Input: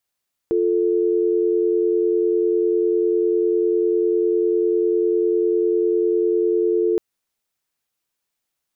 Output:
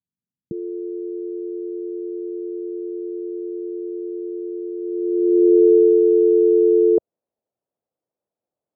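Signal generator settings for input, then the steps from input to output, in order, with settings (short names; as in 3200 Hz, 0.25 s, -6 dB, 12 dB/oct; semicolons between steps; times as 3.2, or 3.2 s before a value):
call progress tone dial tone, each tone -18.5 dBFS 6.47 s
HPF 95 Hz; low-pass sweep 190 Hz -> 590 Hz, 4.77–6.02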